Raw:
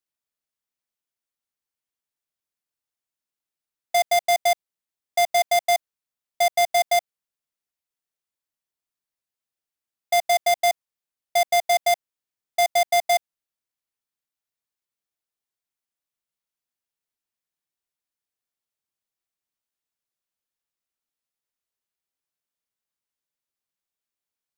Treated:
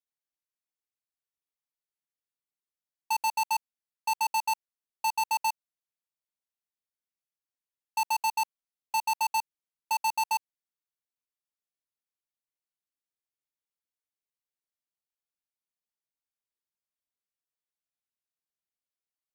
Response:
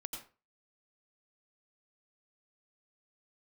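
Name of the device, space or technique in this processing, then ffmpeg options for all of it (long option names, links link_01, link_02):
nightcore: -af "asetrate=56007,aresample=44100,volume=-8dB"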